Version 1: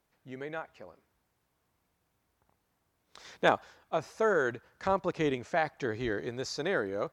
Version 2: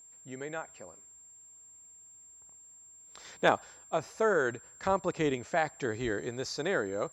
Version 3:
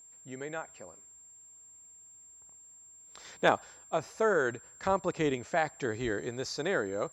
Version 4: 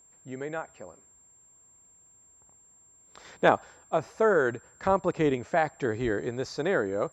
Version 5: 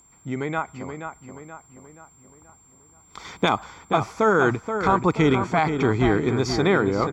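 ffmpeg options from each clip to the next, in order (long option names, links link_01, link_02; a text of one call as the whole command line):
ffmpeg -i in.wav -af "aeval=exprs='val(0)+0.00251*sin(2*PI*7400*n/s)':channel_layout=same" out.wav
ffmpeg -i in.wav -af anull out.wav
ffmpeg -i in.wav -af "highshelf=frequency=2800:gain=-10.5,volume=5dB" out.wav
ffmpeg -i in.wav -filter_complex "[0:a]aecho=1:1:0.9:0.6,acrossover=split=2600[link_01][link_02];[link_01]alimiter=limit=-18.5dB:level=0:latency=1[link_03];[link_03][link_02]amix=inputs=2:normalize=0,asplit=2[link_04][link_05];[link_05]adelay=478,lowpass=frequency=3100:poles=1,volume=-7.5dB,asplit=2[link_06][link_07];[link_07]adelay=478,lowpass=frequency=3100:poles=1,volume=0.48,asplit=2[link_08][link_09];[link_09]adelay=478,lowpass=frequency=3100:poles=1,volume=0.48,asplit=2[link_10][link_11];[link_11]adelay=478,lowpass=frequency=3100:poles=1,volume=0.48,asplit=2[link_12][link_13];[link_13]adelay=478,lowpass=frequency=3100:poles=1,volume=0.48,asplit=2[link_14][link_15];[link_15]adelay=478,lowpass=frequency=3100:poles=1,volume=0.48[link_16];[link_04][link_06][link_08][link_10][link_12][link_14][link_16]amix=inputs=7:normalize=0,volume=9dB" out.wav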